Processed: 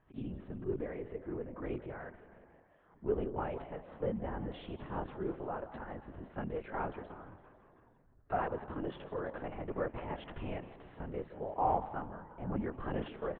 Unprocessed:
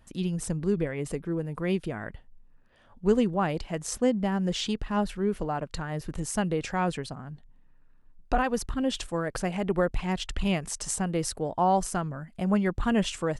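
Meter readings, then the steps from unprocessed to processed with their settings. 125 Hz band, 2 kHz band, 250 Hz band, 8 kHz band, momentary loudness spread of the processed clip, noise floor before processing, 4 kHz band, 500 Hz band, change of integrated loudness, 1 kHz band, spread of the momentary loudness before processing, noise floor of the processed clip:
−12.0 dB, −12.5 dB, −14.0 dB, below −40 dB, 12 LU, −57 dBFS, −21.5 dB, −9.0 dB, −11.0 dB, −8.0 dB, 8 LU, −66 dBFS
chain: soft clipping −12 dBFS, distortion −26 dB
low-pass filter 1,500 Hz 12 dB per octave
on a send: echo with shifted repeats 169 ms, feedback 61%, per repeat +45 Hz, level −17 dB
on the sum: linear-prediction vocoder at 8 kHz whisper
low-shelf EQ 120 Hz −7 dB
harmonic and percussive parts rebalanced percussive −7 dB
low-shelf EQ 340 Hz −6 dB
level −1 dB
MP3 48 kbit/s 44,100 Hz

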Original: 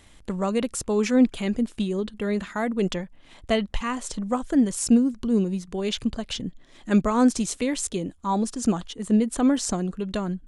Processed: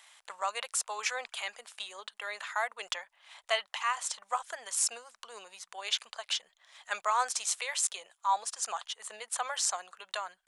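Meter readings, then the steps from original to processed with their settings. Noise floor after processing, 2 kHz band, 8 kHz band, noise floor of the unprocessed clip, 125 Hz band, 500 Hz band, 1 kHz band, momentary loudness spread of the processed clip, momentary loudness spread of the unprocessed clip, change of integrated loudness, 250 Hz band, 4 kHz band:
−77 dBFS, 0.0 dB, 0.0 dB, −51 dBFS, below −40 dB, −15.0 dB, −1.5 dB, 13 LU, 9 LU, −8.5 dB, below −40 dB, 0.0 dB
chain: inverse Chebyshev high-pass filter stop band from 300 Hz, stop band 50 dB

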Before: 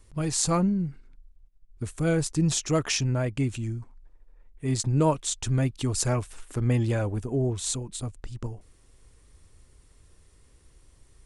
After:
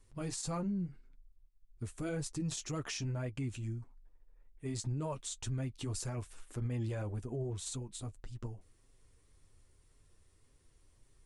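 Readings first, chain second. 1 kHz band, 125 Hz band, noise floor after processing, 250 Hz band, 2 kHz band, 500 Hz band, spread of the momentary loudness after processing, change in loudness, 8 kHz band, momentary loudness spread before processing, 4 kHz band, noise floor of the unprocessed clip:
−14.0 dB, −11.5 dB, −67 dBFS, −12.5 dB, −12.5 dB, −13.5 dB, 9 LU, −12.5 dB, −13.0 dB, 14 LU, −12.5 dB, −58 dBFS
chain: flanger 1.8 Hz, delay 6.9 ms, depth 4 ms, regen −30%
brickwall limiter −24.5 dBFS, peak gain reduction 10.5 dB
level −5.5 dB

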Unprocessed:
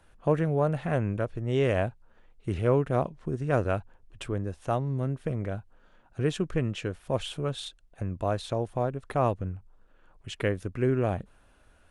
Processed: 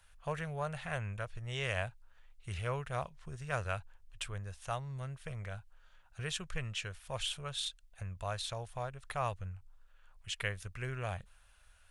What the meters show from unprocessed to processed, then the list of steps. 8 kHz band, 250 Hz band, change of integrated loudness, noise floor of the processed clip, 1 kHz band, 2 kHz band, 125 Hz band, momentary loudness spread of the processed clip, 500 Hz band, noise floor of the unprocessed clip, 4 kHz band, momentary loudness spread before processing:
+2.5 dB, −18.0 dB, −10.0 dB, −63 dBFS, −7.5 dB, −2.0 dB, −10.5 dB, 9 LU, −14.5 dB, −60 dBFS, +1.0 dB, 12 LU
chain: guitar amp tone stack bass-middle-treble 10-0-10
level +3 dB

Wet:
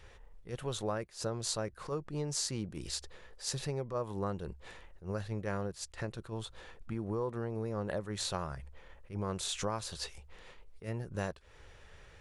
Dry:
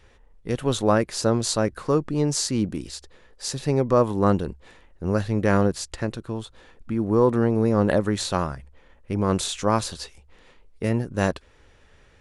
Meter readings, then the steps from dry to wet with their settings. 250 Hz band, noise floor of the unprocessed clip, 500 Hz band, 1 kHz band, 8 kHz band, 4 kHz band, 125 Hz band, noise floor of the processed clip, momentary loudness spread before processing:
−17.5 dB, −56 dBFS, −15.0 dB, −14.5 dB, −8.5 dB, −8.5 dB, −13.0 dB, −58 dBFS, 14 LU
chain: downward compressor 6 to 1, threshold −31 dBFS, peak gain reduction 16.5 dB
parametric band 260 Hz −9.5 dB 0.55 octaves
level that may rise only so fast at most 210 dB per second

